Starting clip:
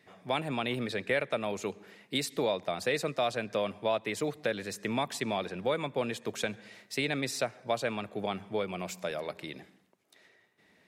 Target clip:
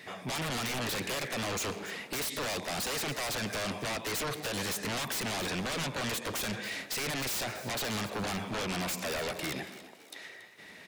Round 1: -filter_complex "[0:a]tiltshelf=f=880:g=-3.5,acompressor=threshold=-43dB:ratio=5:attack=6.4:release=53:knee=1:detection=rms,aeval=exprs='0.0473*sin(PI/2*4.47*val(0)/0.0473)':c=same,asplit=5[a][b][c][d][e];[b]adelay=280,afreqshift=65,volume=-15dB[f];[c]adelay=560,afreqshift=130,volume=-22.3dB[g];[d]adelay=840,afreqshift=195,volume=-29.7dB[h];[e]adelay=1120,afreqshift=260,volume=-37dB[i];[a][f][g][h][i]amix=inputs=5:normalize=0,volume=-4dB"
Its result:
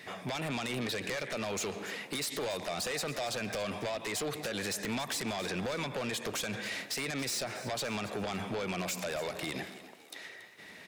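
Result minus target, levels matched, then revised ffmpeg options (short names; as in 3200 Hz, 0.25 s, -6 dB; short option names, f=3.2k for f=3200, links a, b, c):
compressor: peak gain reduction +7 dB
-filter_complex "[0:a]tiltshelf=f=880:g=-3.5,acompressor=threshold=-34dB:ratio=5:attack=6.4:release=53:knee=1:detection=rms,aeval=exprs='0.0473*sin(PI/2*4.47*val(0)/0.0473)':c=same,asplit=5[a][b][c][d][e];[b]adelay=280,afreqshift=65,volume=-15dB[f];[c]adelay=560,afreqshift=130,volume=-22.3dB[g];[d]adelay=840,afreqshift=195,volume=-29.7dB[h];[e]adelay=1120,afreqshift=260,volume=-37dB[i];[a][f][g][h][i]amix=inputs=5:normalize=0,volume=-4dB"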